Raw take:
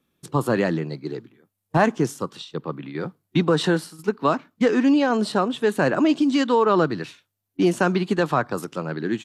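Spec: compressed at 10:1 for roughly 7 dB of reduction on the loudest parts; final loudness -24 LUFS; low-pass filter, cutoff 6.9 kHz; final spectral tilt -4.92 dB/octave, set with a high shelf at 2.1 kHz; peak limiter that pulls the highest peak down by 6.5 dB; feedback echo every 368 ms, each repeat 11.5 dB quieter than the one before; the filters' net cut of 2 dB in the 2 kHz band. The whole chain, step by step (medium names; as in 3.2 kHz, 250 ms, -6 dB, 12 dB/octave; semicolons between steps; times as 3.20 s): low-pass 6.9 kHz; peaking EQ 2 kHz -5.5 dB; treble shelf 2.1 kHz +5 dB; compression 10:1, threshold -21 dBFS; peak limiter -18.5 dBFS; feedback delay 368 ms, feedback 27%, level -11.5 dB; trim +5.5 dB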